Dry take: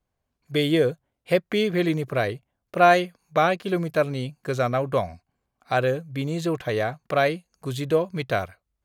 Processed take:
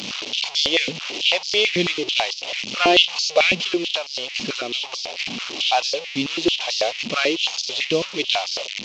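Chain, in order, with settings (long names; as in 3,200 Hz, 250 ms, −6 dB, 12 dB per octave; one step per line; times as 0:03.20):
linear delta modulator 32 kbit/s, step −27.5 dBFS
0:03.57–0:05.04: downward compressor 5 to 1, threshold −23 dBFS, peak gain reduction 7.5 dB
high shelf with overshoot 2,100 Hz +9 dB, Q 3
high-pass on a step sequencer 9.1 Hz 220–4,900 Hz
level −2 dB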